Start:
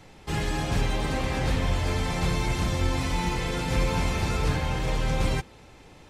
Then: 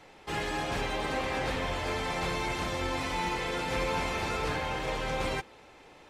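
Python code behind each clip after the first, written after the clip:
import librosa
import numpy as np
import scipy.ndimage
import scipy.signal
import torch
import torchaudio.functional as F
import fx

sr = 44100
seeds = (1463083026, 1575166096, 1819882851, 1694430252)

y = fx.bass_treble(x, sr, bass_db=-13, treble_db=-6)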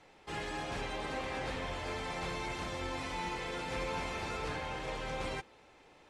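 y = scipy.signal.sosfilt(scipy.signal.butter(4, 11000.0, 'lowpass', fs=sr, output='sos'), x)
y = y * librosa.db_to_amplitude(-6.5)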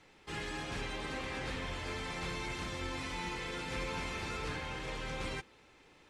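y = fx.peak_eq(x, sr, hz=690.0, db=-7.5, octaves=1.1)
y = y * librosa.db_to_amplitude(1.0)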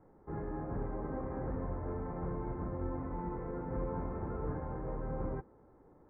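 y = scipy.ndimage.gaussian_filter1d(x, 8.6, mode='constant')
y = y * librosa.db_to_amplitude(4.5)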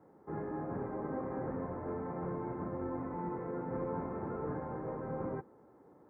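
y = scipy.signal.sosfilt(scipy.signal.butter(2, 150.0, 'highpass', fs=sr, output='sos'), x)
y = y * librosa.db_to_amplitude(2.0)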